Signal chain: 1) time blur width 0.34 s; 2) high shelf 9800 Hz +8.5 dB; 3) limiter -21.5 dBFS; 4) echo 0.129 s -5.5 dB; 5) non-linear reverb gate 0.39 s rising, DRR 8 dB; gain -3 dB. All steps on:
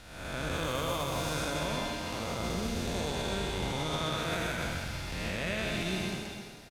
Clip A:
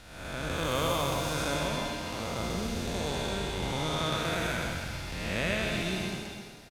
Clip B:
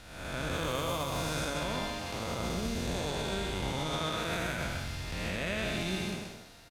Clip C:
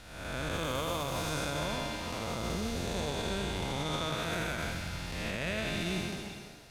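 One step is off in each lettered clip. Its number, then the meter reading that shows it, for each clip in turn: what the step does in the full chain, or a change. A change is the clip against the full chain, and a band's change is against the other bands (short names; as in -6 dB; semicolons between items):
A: 3, crest factor change +3.5 dB; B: 5, echo-to-direct -3.0 dB to -5.5 dB; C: 4, echo-to-direct -3.0 dB to -8.0 dB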